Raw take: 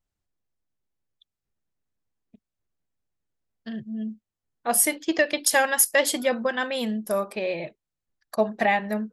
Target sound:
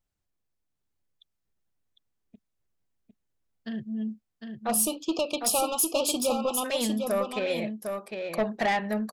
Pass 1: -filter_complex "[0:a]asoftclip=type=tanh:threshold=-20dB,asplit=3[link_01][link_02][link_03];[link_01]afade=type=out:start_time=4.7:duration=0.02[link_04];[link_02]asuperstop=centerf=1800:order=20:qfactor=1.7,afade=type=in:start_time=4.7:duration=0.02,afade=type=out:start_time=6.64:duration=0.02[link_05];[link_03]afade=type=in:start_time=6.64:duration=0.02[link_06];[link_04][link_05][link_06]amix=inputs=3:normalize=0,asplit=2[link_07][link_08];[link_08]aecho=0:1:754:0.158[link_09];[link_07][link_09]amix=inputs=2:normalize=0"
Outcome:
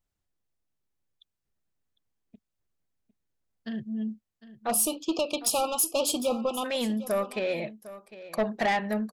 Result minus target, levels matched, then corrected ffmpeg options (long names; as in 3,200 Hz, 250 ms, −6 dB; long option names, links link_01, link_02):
echo-to-direct −10.5 dB
-filter_complex "[0:a]asoftclip=type=tanh:threshold=-20dB,asplit=3[link_01][link_02][link_03];[link_01]afade=type=out:start_time=4.7:duration=0.02[link_04];[link_02]asuperstop=centerf=1800:order=20:qfactor=1.7,afade=type=in:start_time=4.7:duration=0.02,afade=type=out:start_time=6.64:duration=0.02[link_05];[link_03]afade=type=in:start_time=6.64:duration=0.02[link_06];[link_04][link_05][link_06]amix=inputs=3:normalize=0,asplit=2[link_07][link_08];[link_08]aecho=0:1:754:0.531[link_09];[link_07][link_09]amix=inputs=2:normalize=0"